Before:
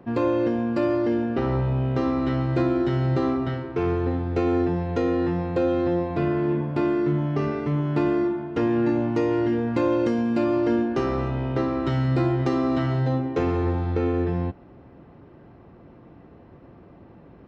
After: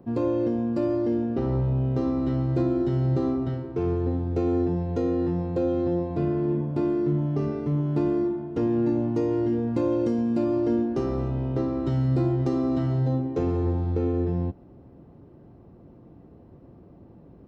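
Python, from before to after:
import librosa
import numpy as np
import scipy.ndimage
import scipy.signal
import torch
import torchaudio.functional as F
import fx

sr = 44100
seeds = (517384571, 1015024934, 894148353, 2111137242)

y = fx.peak_eq(x, sr, hz=2000.0, db=-13.0, octaves=2.5)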